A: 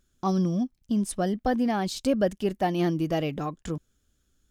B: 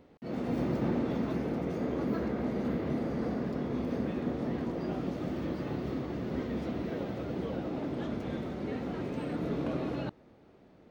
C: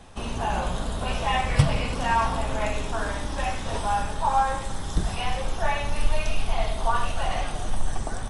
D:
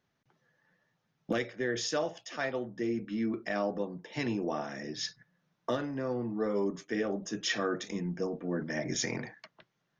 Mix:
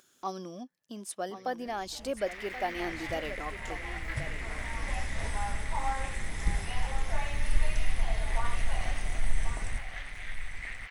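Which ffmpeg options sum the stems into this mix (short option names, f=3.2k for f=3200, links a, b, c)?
-filter_complex "[0:a]highpass=460,volume=-5dB,asplit=3[a][b][c];[b]volume=-12dB[d];[1:a]aeval=exprs='max(val(0),0)':c=same,highpass=f=2k:t=q:w=6.2,adelay=1950,volume=2dB[e];[2:a]crystalizer=i=1.5:c=0,lowshelf=f=120:g=11,adelay=1500,volume=-12.5dB,asplit=2[f][g];[g]volume=-10.5dB[h];[3:a]alimiter=level_in=6.5dB:limit=-24dB:level=0:latency=1,volume=-6.5dB,volume=-17.5dB[i];[c]apad=whole_len=431841[j];[f][j]sidechaincompress=threshold=-54dB:ratio=5:attack=16:release=1000[k];[d][h]amix=inputs=2:normalize=0,aecho=0:1:1080:1[l];[a][e][k][i][l]amix=inputs=5:normalize=0,acompressor=mode=upward:threshold=-52dB:ratio=2.5"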